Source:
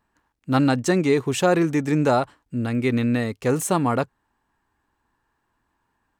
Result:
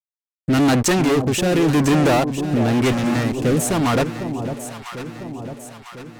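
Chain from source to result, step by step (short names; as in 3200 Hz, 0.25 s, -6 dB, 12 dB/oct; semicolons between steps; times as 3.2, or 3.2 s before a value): fuzz box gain 29 dB, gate -38 dBFS; rotary speaker horn 0.9 Hz; 2.92–3.43 tube stage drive 19 dB, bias 0.7; echo with dull and thin repeats by turns 0.5 s, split 890 Hz, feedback 72%, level -8 dB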